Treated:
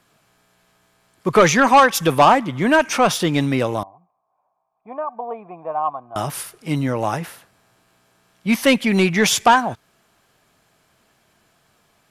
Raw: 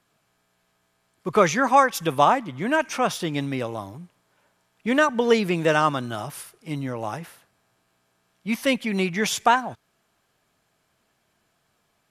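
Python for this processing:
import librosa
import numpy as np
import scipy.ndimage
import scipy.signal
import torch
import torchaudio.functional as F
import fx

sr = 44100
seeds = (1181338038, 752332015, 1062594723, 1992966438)

y = fx.formant_cascade(x, sr, vowel='a', at=(3.83, 6.16))
y = 10.0 ** (-13.5 / 20.0) * np.tanh(y / 10.0 ** (-13.5 / 20.0))
y = y * 10.0 ** (8.5 / 20.0)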